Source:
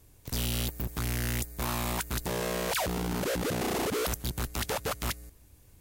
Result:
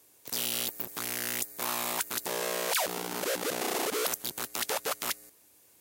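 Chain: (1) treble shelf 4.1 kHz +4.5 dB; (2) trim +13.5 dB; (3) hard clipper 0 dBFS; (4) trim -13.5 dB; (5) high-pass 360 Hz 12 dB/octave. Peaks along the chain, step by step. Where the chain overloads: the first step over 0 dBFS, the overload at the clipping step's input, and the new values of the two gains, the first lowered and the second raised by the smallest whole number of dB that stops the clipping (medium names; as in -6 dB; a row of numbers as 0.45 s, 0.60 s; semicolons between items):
-16.0 dBFS, -2.5 dBFS, -2.5 dBFS, -16.0 dBFS, -16.0 dBFS; nothing clips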